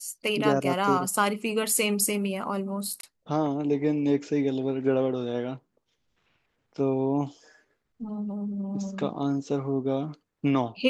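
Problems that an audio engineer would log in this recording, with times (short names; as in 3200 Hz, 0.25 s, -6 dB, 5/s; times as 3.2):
3.01–3.03 gap 23 ms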